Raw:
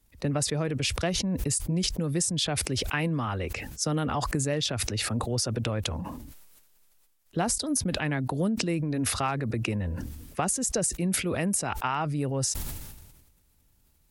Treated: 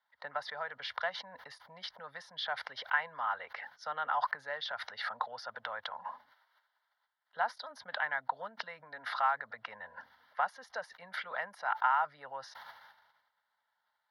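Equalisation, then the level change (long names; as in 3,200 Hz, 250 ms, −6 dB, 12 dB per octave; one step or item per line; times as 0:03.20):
high-pass with resonance 1,100 Hz, resonance Q 7.1
high-frequency loss of the air 350 metres
phaser with its sweep stopped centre 1,700 Hz, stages 8
0.0 dB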